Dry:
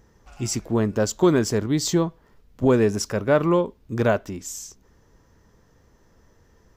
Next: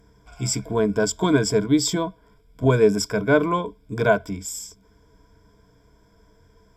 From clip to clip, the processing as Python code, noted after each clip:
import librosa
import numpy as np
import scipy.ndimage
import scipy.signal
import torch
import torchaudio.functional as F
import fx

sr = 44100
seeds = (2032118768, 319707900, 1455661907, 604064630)

y = fx.ripple_eq(x, sr, per_octave=1.7, db=16)
y = F.gain(torch.from_numpy(y), -1.5).numpy()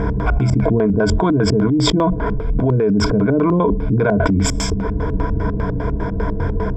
y = fx.filter_lfo_lowpass(x, sr, shape='square', hz=5.0, low_hz=300.0, high_hz=1600.0, q=0.83)
y = fx.env_flatten(y, sr, amount_pct=100)
y = F.gain(torch.from_numpy(y), -3.0).numpy()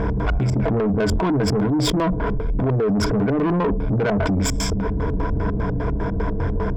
y = 10.0 ** (-15.5 / 20.0) * np.tanh(x / 10.0 ** (-15.5 / 20.0))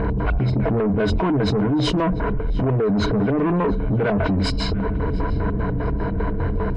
y = fx.freq_compress(x, sr, knee_hz=2300.0, ratio=1.5)
y = fx.echo_banded(y, sr, ms=695, feedback_pct=54, hz=1600.0, wet_db=-17.5)